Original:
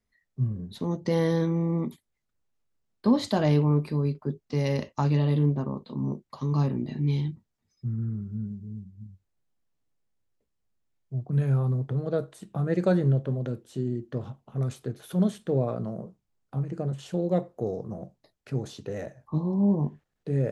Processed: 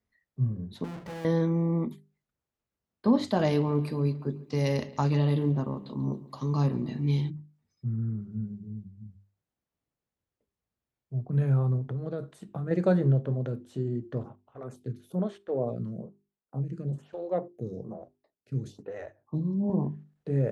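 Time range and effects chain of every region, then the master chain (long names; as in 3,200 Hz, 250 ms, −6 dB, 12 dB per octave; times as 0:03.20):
0:00.84–0:01.25: each half-wave held at its own peak + high-shelf EQ 5,400 Hz −11.5 dB + tube saturation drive 37 dB, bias 0.5
0:03.39–0:07.30: high-shelf EQ 4,300 Hz +12 dB + bucket-brigade delay 139 ms, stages 4,096, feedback 54%, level −19 dB
0:11.78–0:12.71: dynamic equaliser 640 Hz, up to −4 dB, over −39 dBFS, Q 0.93 + downward compressor 3 to 1, threshold −29 dBFS
0:14.23–0:19.70: noise gate −45 dBFS, range −7 dB + phaser with staggered stages 1.1 Hz
whole clip: high-pass filter 44 Hz; high-shelf EQ 3,100 Hz −8 dB; mains-hum notches 50/100/150/200/250/300/350/400 Hz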